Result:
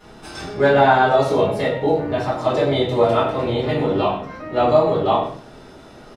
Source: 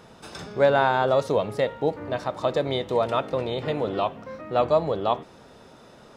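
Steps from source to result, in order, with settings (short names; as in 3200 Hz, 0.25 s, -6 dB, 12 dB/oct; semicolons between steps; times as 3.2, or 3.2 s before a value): on a send: echo 97 ms -13.5 dB; on the sum: shoebox room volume 44 m³, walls mixed, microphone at 3 m; gain -7.5 dB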